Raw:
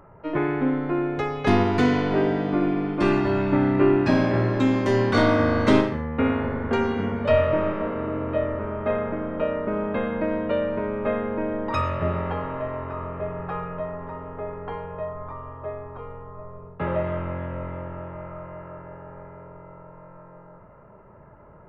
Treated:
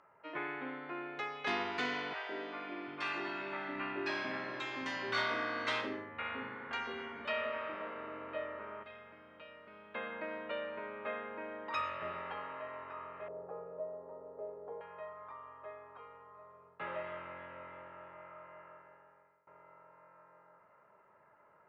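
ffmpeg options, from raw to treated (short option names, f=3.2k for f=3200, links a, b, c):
-filter_complex "[0:a]asettb=1/sr,asplit=3[a][b][c];[a]atrim=end=2.134[d];[b]atrim=start=2.13:end=7.75,asetpts=PTS-STARTPTS,afade=t=in:d=0.004:c=qsin,afade=t=out:st=5.616:d=0.004:c=qsin,acrossover=split=190|590[e][f][g];[f]adelay=160[h];[e]adelay=740[i];[i][h][g]amix=inputs=3:normalize=0,atrim=end_sample=247842[j];[c]atrim=start=7.746[k];[d][j]acrossfade=d=0.004:c1=hsin:c2=qsin[l];[l][k]acrossfade=d=0.004:c1=qsin:c2=hsin,asettb=1/sr,asplit=3[m][n][o];[m]atrim=end=8.834[p];[n]atrim=start=8.83:end=9.95,asetpts=PTS-STARTPTS,afade=t=in:d=0.004:c=qsin,afade=t=out:st=1.116:d=0.004:c=qsin,acrossover=split=140|3000[q][r][s];[r]acompressor=threshold=-49dB:ratio=2:attack=3.2:release=140:knee=2.83:detection=peak[t];[q][t][s]amix=inputs=3:normalize=0[u];[o]atrim=start=9.946[v];[p][u]acrossfade=d=0.004:c1=hsin:c2=qsin[w];[w][v]acrossfade=d=0.004:c1=qsin:c2=hsin,asettb=1/sr,asplit=3[x][y][z];[x]atrim=end=13.284[aa];[y]atrim=start=13.28:end=14.81,asetpts=PTS-STARTPTS,afade=t=in:d=0.004:c=qsin,afade=t=out:st=1.526:d=0.004:c=qsin,lowpass=f=530:t=q:w=3.5[ab];[z]atrim=start=14.806[ac];[aa][ab]acrossfade=d=0.004:c1=hsin:c2=qsin[ad];[ad][ac]acrossfade=d=0.004:c1=qsin:c2=hsin,asplit=2[ae][af];[ae]atrim=end=19.47,asetpts=PTS-STARTPTS,afade=t=out:st=18.61:d=0.86:silence=0.0794328[ag];[af]atrim=start=19.47,asetpts=PTS-STARTPTS,afade=t=in:d=0.004:c=hsin:silence=0.0794328[ah];[ag][ah]concat=n=2:v=0:a=1,lowpass=2.8k,aderivative,bandreject=f=50:t=h:w=6,bandreject=f=100:t=h:w=6,volume=5.5dB"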